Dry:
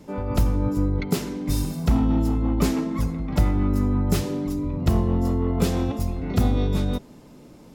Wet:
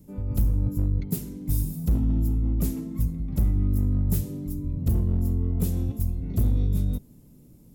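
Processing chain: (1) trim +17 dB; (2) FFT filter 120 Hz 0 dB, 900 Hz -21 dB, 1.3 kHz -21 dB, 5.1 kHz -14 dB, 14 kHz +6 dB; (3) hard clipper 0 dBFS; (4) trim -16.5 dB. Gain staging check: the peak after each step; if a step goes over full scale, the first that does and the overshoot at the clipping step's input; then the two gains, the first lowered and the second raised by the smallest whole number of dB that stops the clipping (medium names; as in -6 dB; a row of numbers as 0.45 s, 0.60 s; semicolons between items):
+10.0 dBFS, +8.5 dBFS, 0.0 dBFS, -16.5 dBFS; step 1, 8.5 dB; step 1 +8 dB, step 4 -7.5 dB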